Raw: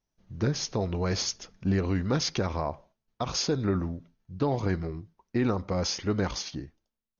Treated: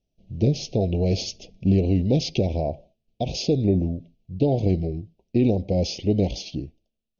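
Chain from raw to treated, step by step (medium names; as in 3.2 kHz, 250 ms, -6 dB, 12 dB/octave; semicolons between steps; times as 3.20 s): elliptic band-stop 680–2600 Hz, stop band 80 dB; distance through air 160 m; trim +7.5 dB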